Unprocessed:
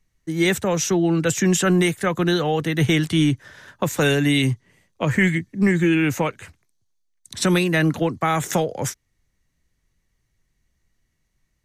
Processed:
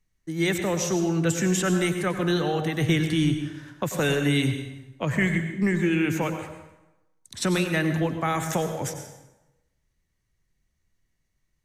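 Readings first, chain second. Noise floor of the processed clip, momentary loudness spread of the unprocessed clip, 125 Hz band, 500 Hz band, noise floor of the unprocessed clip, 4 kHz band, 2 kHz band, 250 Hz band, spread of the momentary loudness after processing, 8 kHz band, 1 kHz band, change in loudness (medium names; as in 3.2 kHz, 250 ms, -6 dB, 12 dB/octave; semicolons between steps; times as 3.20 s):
-74 dBFS, 9 LU, -4.0 dB, -4.5 dB, -72 dBFS, -5.0 dB, -4.5 dB, -4.5 dB, 11 LU, -5.0 dB, -4.5 dB, -4.5 dB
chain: plate-style reverb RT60 1 s, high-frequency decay 0.75×, pre-delay 80 ms, DRR 6.5 dB; trim -5.5 dB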